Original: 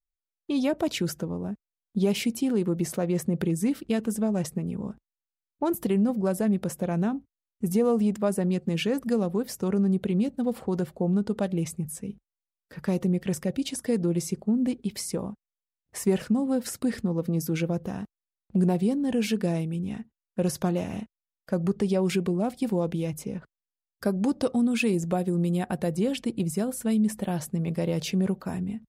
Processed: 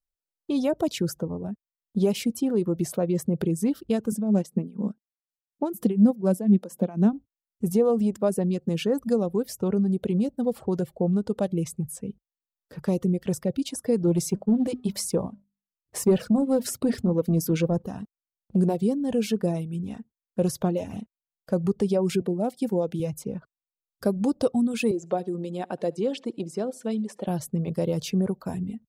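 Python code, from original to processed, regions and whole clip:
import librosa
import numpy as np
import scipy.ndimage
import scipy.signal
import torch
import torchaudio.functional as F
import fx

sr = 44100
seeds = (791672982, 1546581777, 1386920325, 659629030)

y = fx.chain(x, sr, fx.low_shelf_res(hz=140.0, db=-12.5, q=3.0),
    fx.tremolo(hz=4.1, depth=0.68), at=(4.12, 7.13))
y = fx.chain(y, sr, fx.hum_notches(base_hz=50, count=5),
    fx.leveller(passes=1), at=(14.05, 17.84))
y = fx.chain(y, sr, fx.highpass(hz=150.0, slope=12),
    fx.notch(hz=1100.0, q=6.3), at=(22.21, 23.0))
y = fx.chain(y, sr, fx.bandpass_edges(low_hz=280.0, high_hz=5800.0),
    fx.echo_feedback(ms=73, feedback_pct=34, wet_db=-15.5), at=(24.91, 27.27))
y = fx.dereverb_blind(y, sr, rt60_s=0.66)
y = fx.graphic_eq(y, sr, hz=(125, 500, 2000), db=(3, 4, -6))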